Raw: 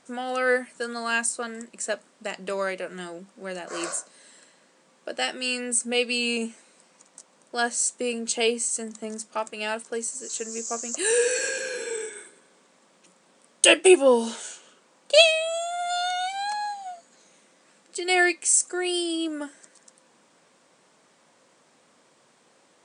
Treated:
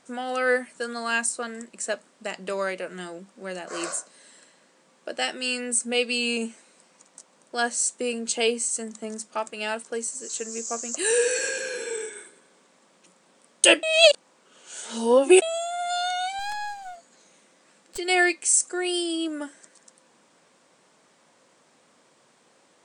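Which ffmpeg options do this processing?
-filter_complex "[0:a]asettb=1/sr,asplit=3[a][b][c];[a]atrim=end=16.394[d];[b]atrim=start=16.39:end=17.98,asetpts=PTS-STARTPTS,afade=t=in:d=0.004:c=qsin,afade=t=out:st=1.586:d=0.004:c=qsin,aeval=exprs='clip(val(0),-1,0.00891)':c=same[e];[c]atrim=start=17.976[f];[d][e]acrossfade=d=0.004:c1=hsin:c2=qsin[g];[g][f]acrossfade=d=0.004:c1=qsin:c2=hsin,asplit=3[h][i][j];[h]atrim=end=13.832[k];[i]atrim=start=13.828:end=15.422,asetpts=PTS-STARTPTS,areverse[l];[j]atrim=start=15.418[m];[k][l]acrossfade=d=0.004:c1=hsin:c2=hsin[n];[n][m]acrossfade=d=0.004:c1=hsin:c2=hsin"

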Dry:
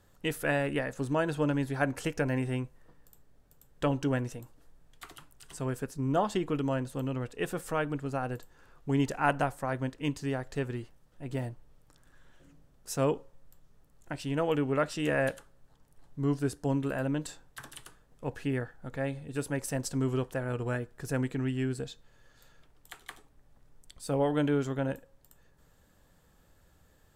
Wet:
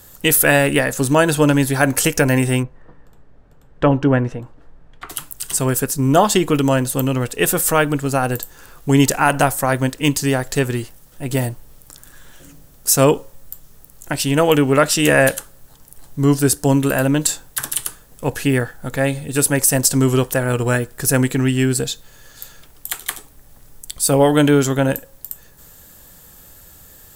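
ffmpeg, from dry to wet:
-filter_complex "[0:a]asplit=3[a][b][c];[a]afade=t=out:st=2.62:d=0.02[d];[b]lowpass=1.7k,afade=t=in:st=2.62:d=0.02,afade=t=out:st=5.09:d=0.02[e];[c]afade=t=in:st=5.09:d=0.02[f];[d][e][f]amix=inputs=3:normalize=0,aemphasis=mode=production:type=75fm,alimiter=level_in=16dB:limit=-1dB:release=50:level=0:latency=1,volume=-1dB"

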